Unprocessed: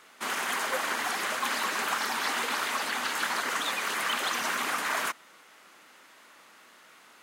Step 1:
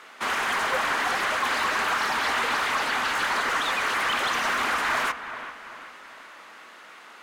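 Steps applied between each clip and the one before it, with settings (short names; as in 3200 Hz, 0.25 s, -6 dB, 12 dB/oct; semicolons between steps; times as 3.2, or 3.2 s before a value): low shelf 330 Hz +4 dB; overdrive pedal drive 16 dB, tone 2400 Hz, clips at -15.5 dBFS; on a send: dark delay 0.388 s, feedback 45%, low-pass 2800 Hz, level -11.5 dB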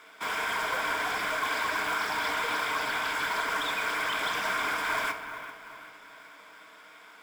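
ripple EQ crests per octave 1.7, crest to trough 9 dB; short-mantissa float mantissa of 2-bit; on a send at -6.5 dB: reverb RT60 1.1 s, pre-delay 6 ms; on the sum: gain -6.5 dB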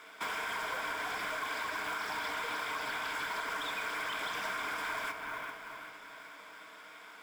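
compressor, threshold -34 dBFS, peak gain reduction 8.5 dB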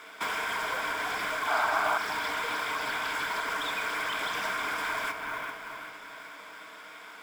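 painted sound noise, 1.47–1.98, 600–1600 Hz -33 dBFS; gain +5 dB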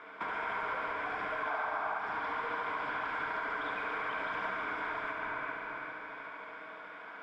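LPF 1700 Hz 12 dB/oct; compressor 4:1, threshold -35 dBFS, peak gain reduction 10 dB; on a send: thinning echo 71 ms, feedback 85%, high-pass 210 Hz, level -7 dB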